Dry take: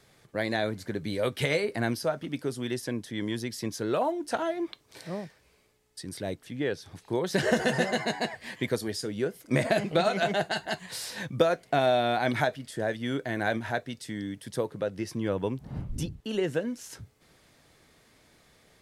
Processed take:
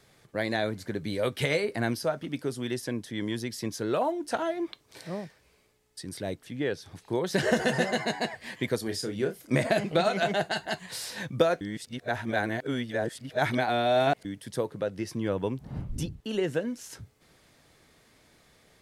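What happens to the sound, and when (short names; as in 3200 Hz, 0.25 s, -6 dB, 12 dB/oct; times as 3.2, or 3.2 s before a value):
8.83–9.55 doubler 31 ms -7 dB
11.61–14.25 reverse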